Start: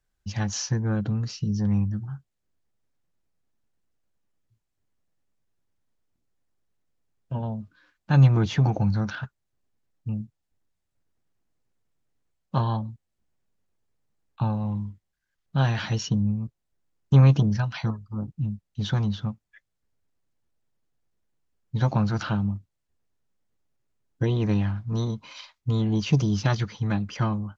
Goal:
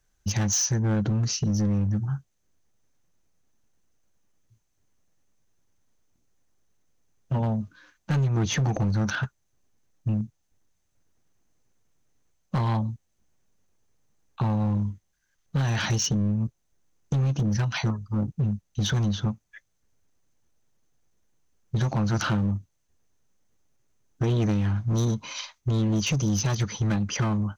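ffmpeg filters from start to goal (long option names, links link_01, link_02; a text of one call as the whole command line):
ffmpeg -i in.wav -af "equalizer=frequency=6200:width=7.8:gain=13,acompressor=threshold=-26dB:ratio=6,volume=26.5dB,asoftclip=hard,volume=-26.5dB,volume=6.5dB" out.wav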